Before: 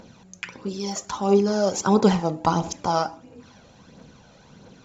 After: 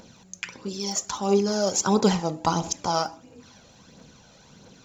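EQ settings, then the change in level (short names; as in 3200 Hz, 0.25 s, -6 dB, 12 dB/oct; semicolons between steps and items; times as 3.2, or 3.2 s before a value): high shelf 4000 Hz +11 dB; -3.0 dB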